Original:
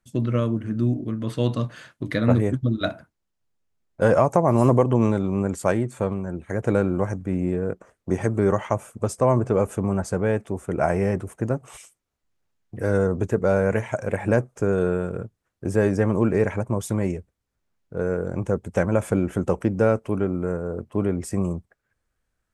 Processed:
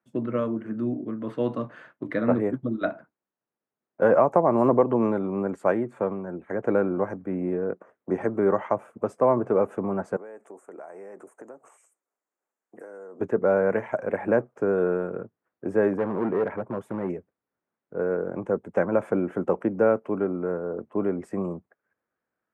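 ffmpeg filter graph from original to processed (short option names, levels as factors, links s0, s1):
-filter_complex "[0:a]asettb=1/sr,asplit=3[s0][s1][s2];[s0]atrim=end=0.364[s3];[s1]atrim=start=0.36:end=0.92,asetpts=PTS-STARTPTS,afade=t=in:d=0.004:c=qsin,afade=t=out:st=0.556:d=0.004:c=qsin,highshelf=f=4100:g=6,bandreject=f=50:t=h:w=6,bandreject=f=100:t=h:w=6,bandreject=f=150:t=h:w=6,bandreject=f=200:t=h:w=6,bandreject=f=250:t=h:w=6,bandreject=f=300:t=h:w=6,bandreject=f=350:t=h:w=6[s4];[s2]atrim=start=0.916[s5];[s3][s4]acrossfade=d=0.004:c1=hsin:c2=qsin[s6];[s6][s5]acrossfade=d=0.004:c1=qsin:c2=hsin,asettb=1/sr,asplit=3[s7][s8][s9];[s7]atrim=end=10.164[s10];[s8]atrim=start=10.16:end=13.2,asetpts=PTS-STARTPTS,afade=t=in:d=0.004:c=qsin,afade=t=out:st=3.036:d=0.004:c=qsin,highpass=370,highshelf=f=5500:t=q:w=3:g=11,acompressor=threshold=0.0141:ratio=12:attack=3.2:release=140:knee=1:detection=peak[s11];[s9]atrim=start=13.196[s12];[s10][s11]acrossfade=d=0.004:c1=hsin:c2=qsin[s13];[s13][s12]acrossfade=d=0.004:c1=qsin:c2=hsin,asettb=1/sr,asplit=3[s14][s15][s16];[s14]atrim=end=15.934[s17];[s15]atrim=start=15.93:end=17.1,asetpts=PTS-STARTPTS,afade=t=in:d=0.004:c=qsin,afade=t=out:st=1.166:d=0.004:c=qsin,equalizer=f=5400:w=0.8:g=-10.5,volume=8.41,asoftclip=hard,volume=0.119[s18];[s16]atrim=start=17.096[s19];[s17][s18]acrossfade=d=0.004:c1=hsin:c2=qsin[s20];[s20][s19]acrossfade=d=0.004:c1=qsin:c2=hsin,highpass=110,acrossover=split=200 2100:gain=0.178 1 0.0794[s21][s22][s23];[s21][s22][s23]amix=inputs=3:normalize=0"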